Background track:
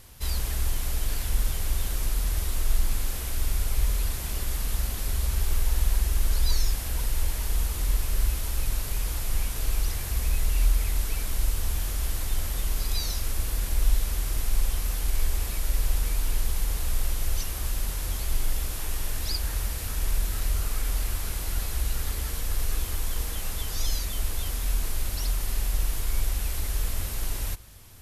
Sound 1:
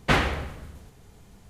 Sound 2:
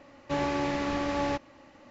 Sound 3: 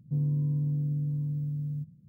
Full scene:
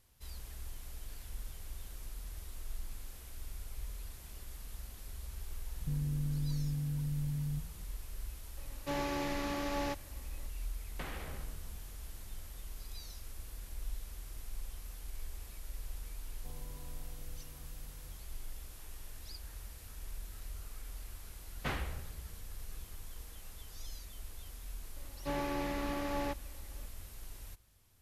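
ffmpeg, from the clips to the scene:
-filter_complex "[3:a]asplit=2[s0][s1];[2:a]asplit=2[s2][s3];[1:a]asplit=2[s4][s5];[0:a]volume=0.119[s6];[s0]acompressor=threshold=0.0316:ratio=6:attack=3.2:release=140:knee=1:detection=peak[s7];[s2]highshelf=f=3900:g=7.5[s8];[s4]acompressor=threshold=0.0316:ratio=6:attack=3.2:release=140:knee=1:detection=peak[s9];[s1]highpass=f=800:t=q:w=4.4[s10];[s5]asubboost=boost=10.5:cutoff=160[s11];[s7]atrim=end=2.08,asetpts=PTS-STARTPTS,volume=0.708,afade=t=in:d=0.004:c=hsin,afade=t=out:st=2.076:d=0.004:c=hsin,adelay=5760[s12];[s8]atrim=end=1.9,asetpts=PTS-STARTPTS,volume=0.422,afade=t=in:d=0.004:c=hsin,afade=t=out:st=1.896:d=0.004:c=hsin,adelay=8570[s13];[s9]atrim=end=1.49,asetpts=PTS-STARTPTS,volume=0.299,afade=t=in:d=0.004:c=hsin,afade=t=out:st=1.486:d=0.004:c=hsin,adelay=10910[s14];[s10]atrim=end=2.08,asetpts=PTS-STARTPTS,volume=0.891,afade=t=in:d=0.004:c=hsin,afade=t=out:st=2.076:d=0.004:c=hsin,adelay=16330[s15];[s11]atrim=end=1.49,asetpts=PTS-STARTPTS,volume=0.15,afade=t=in:d=0.004:c=hsin,afade=t=out:st=1.486:d=0.004:c=hsin,adelay=21560[s16];[s3]atrim=end=1.9,asetpts=PTS-STARTPTS,volume=0.422,afade=t=in:d=0.004:c=hsin,afade=t=out:st=1.896:d=0.004:c=hsin,adelay=24960[s17];[s6][s12][s13][s14][s15][s16][s17]amix=inputs=7:normalize=0"

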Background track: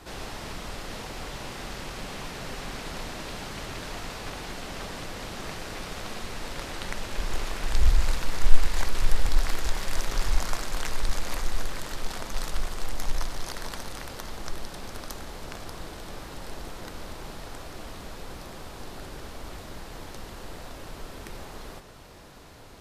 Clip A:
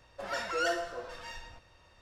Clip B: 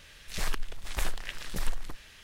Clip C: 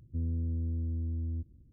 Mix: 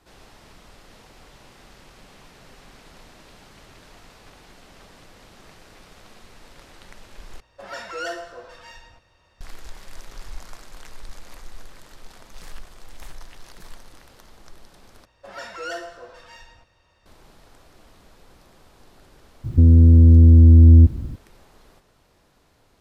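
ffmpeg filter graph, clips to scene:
-filter_complex "[1:a]asplit=2[s0][s1];[0:a]volume=0.251[s2];[3:a]alimiter=level_in=37.6:limit=0.891:release=50:level=0:latency=1[s3];[s2]asplit=3[s4][s5][s6];[s4]atrim=end=7.404[s7];[s0]atrim=end=2.01[s8];[s5]atrim=start=9.406:end=15.054[s9];[s1]atrim=end=2.01,asetpts=PTS-STARTPTS,volume=0.841[s10];[s6]atrim=start=17.056[s11];[2:a]atrim=end=2.23,asetpts=PTS-STARTPTS,volume=0.224,afade=t=in:d=0.004:c=hsin,afade=t=out:st=2.226:d=0.004:c=hsin,adelay=12040[s12];[s3]atrim=end=1.72,asetpts=PTS-STARTPTS,volume=0.631,afade=t=in:d=0.004:c=hsin,afade=t=out:st=1.716:d=0.004:c=hsin,adelay=19440[s13];[s7][s8]acrossfade=d=0.004:c1=hsin:c2=hsin[s14];[s14][s9]acrossfade=d=0.004:c1=hsin:c2=hsin[s15];[s15][s10]acrossfade=d=0.004:c1=hsin:c2=hsin[s16];[s16][s11]acrossfade=d=0.004:c1=hsin:c2=hsin[s17];[s17][s12][s13]amix=inputs=3:normalize=0"

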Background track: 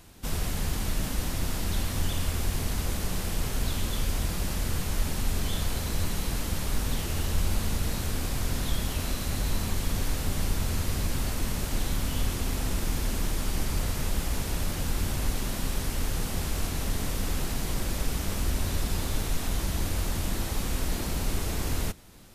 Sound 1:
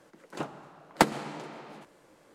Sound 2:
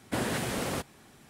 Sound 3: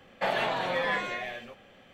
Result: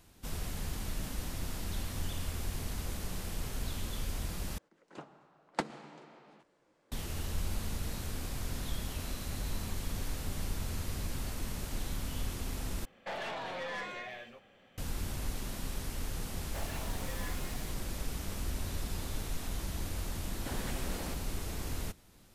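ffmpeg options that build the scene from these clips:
-filter_complex "[3:a]asplit=2[s0][s1];[0:a]volume=0.376[s2];[1:a]lowpass=7400[s3];[s0]aeval=exprs='(tanh(25.1*val(0)+0.25)-tanh(0.25))/25.1':c=same[s4];[s1]acrusher=bits=5:mix=0:aa=0.000001[s5];[s2]asplit=3[s6][s7][s8];[s6]atrim=end=4.584[s9];[s3]atrim=end=2.34,asetpts=PTS-STARTPTS,volume=0.251[s10];[s7]atrim=start=6.916:end=12.854[s11];[s4]atrim=end=1.93,asetpts=PTS-STARTPTS,volume=0.473[s12];[s8]atrim=start=14.776[s13];[s5]atrim=end=1.93,asetpts=PTS-STARTPTS,volume=0.133,afade=t=in:d=0.004:c=hsin,afade=t=out:st=1.926:d=0.004:c=hsin,adelay=16330[s14];[2:a]atrim=end=1.29,asetpts=PTS-STARTPTS,volume=0.282,afade=t=in:d=0.004:c=hsin,afade=t=out:st=1.286:d=0.004:c=hsin,adelay=20330[s15];[s9][s10]acrossfade=d=0.004:c1=hsin:c2=hsin[s16];[s16][s11]acrossfade=d=0.004:c1=hsin:c2=hsin[s17];[s17][s12]acrossfade=d=0.004:c1=hsin:c2=hsin[s18];[s18][s13]acrossfade=d=0.004:c1=hsin:c2=hsin[s19];[s19][s14][s15]amix=inputs=3:normalize=0"

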